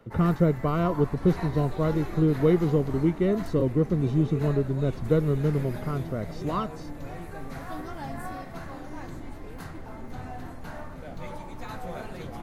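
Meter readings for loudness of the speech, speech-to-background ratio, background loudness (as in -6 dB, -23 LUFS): -25.5 LUFS, 13.5 dB, -39.0 LUFS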